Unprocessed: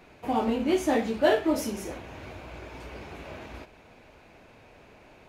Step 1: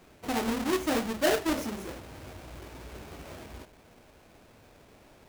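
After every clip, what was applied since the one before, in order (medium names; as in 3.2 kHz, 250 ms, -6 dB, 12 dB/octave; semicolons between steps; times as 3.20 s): square wave that keeps the level; trim -7.5 dB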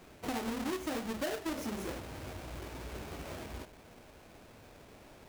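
compression 10:1, threshold -35 dBFS, peak gain reduction 14 dB; trim +1 dB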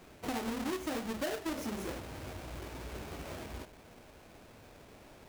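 no audible change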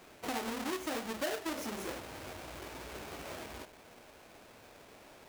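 bass shelf 240 Hz -11 dB; trim +2 dB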